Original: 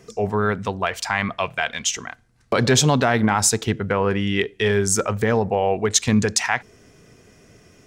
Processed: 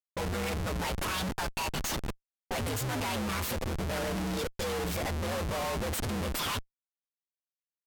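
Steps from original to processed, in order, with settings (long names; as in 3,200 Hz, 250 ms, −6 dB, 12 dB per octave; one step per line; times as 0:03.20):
partials spread apart or drawn together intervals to 129%
comparator with hysteresis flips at −32 dBFS
low-pass that shuts in the quiet parts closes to 570 Hz, open at −28 dBFS
level −7.5 dB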